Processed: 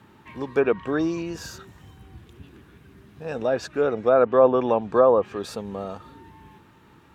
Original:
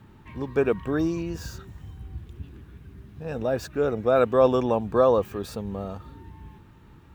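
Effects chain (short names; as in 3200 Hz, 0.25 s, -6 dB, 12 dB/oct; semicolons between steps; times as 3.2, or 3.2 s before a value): HPF 330 Hz 6 dB/oct; treble ducked by the level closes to 1400 Hz, closed at -16.5 dBFS; gain +4 dB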